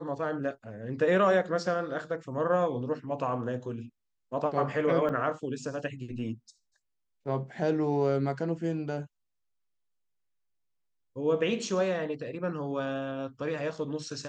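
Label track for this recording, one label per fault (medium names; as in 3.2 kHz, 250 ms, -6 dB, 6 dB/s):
5.090000	5.090000	dropout 4.8 ms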